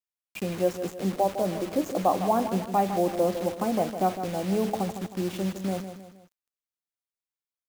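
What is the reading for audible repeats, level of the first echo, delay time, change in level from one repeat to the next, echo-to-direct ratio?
3, -10.0 dB, 0.157 s, -7.0 dB, -9.0 dB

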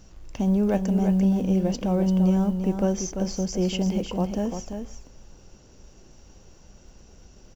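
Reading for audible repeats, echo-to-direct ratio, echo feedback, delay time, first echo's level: 1, -7.0 dB, no steady repeat, 0.342 s, -7.0 dB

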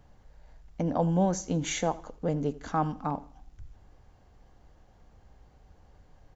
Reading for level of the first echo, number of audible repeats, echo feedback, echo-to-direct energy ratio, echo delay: -20.5 dB, 2, 34%, -20.0 dB, 82 ms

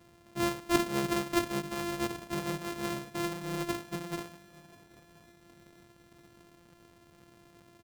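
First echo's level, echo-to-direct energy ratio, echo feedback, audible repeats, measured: -24.0 dB, -23.0 dB, 42%, 2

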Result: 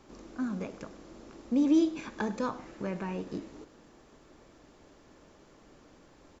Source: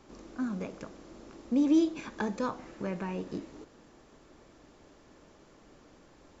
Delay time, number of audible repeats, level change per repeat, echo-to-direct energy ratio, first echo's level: 0.101 s, 1, no steady repeat, -18.5 dB, -18.5 dB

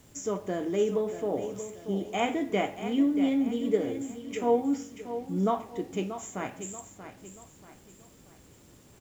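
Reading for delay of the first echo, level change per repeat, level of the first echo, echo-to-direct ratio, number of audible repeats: 0.633 s, -8.0 dB, -11.0 dB, -10.5 dB, 3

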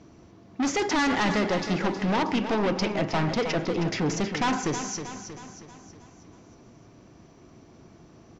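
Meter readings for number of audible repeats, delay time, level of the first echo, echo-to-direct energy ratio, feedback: 5, 0.317 s, -9.5 dB, -8.0 dB, 51%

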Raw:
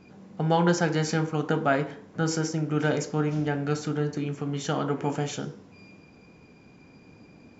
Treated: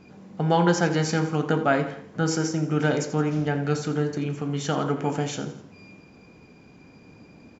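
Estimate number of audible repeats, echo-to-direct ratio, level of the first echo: 3, -13.0 dB, -14.0 dB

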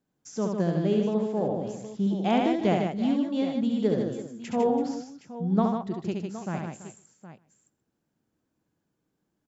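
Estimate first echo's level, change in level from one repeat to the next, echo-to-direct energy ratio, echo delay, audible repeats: -4.0 dB, no steady repeat, -1.0 dB, 70 ms, 6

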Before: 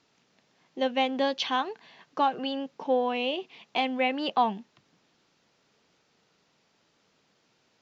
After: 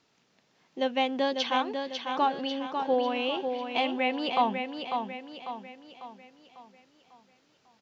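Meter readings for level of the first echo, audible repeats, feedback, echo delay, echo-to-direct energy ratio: -6.0 dB, 5, 46%, 0.547 s, -5.0 dB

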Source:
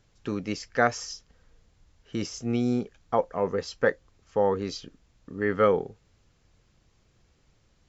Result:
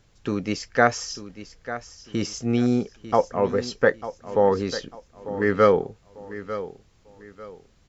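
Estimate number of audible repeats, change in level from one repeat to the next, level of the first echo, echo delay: 3, -10.5 dB, -13.5 dB, 0.896 s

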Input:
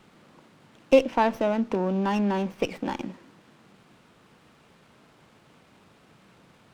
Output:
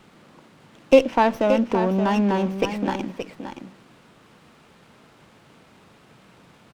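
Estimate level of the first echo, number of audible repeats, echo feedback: -9.0 dB, 1, no steady repeat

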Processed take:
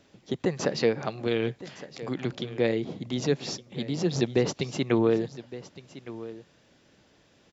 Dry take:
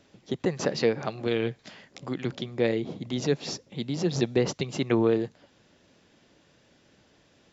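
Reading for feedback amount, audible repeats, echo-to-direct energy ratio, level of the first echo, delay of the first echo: no steady repeat, 1, -16.0 dB, -16.0 dB, 1.163 s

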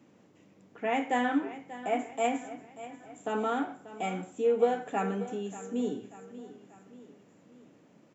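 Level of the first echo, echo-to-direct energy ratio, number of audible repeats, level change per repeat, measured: -15.0 dB, -14.0 dB, 3, -6.0 dB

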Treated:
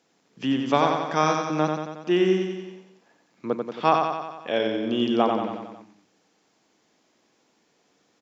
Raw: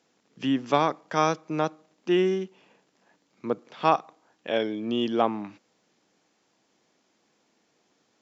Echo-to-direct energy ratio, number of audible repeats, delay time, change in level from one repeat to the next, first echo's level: -2.5 dB, 6, 91 ms, -4.5 dB, -4.5 dB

